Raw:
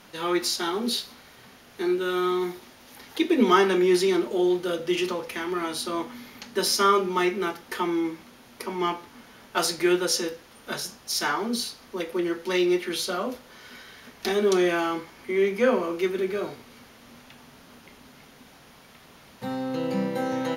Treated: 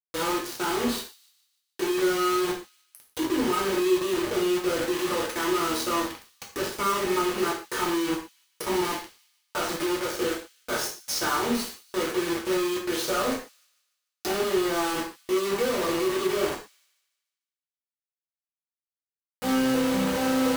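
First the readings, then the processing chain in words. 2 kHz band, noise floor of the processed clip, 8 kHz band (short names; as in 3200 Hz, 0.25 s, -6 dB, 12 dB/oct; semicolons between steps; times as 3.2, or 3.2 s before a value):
-0.5 dB, under -85 dBFS, +0.5 dB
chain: treble ducked by the level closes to 1700 Hz, closed at -19.5 dBFS; HPF 220 Hz 12 dB/oct; band shelf 3000 Hz -8.5 dB; compressor 16:1, threshold -28 dBFS, peak gain reduction 14.5 dB; hard clip -31 dBFS, distortion -11 dB; bit-crush 6-bit; on a send: thin delay 0.148 s, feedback 46%, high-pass 3200 Hz, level -19.5 dB; on the sum: non-linear reverb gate 0.15 s falling, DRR -2 dB; gain +3 dB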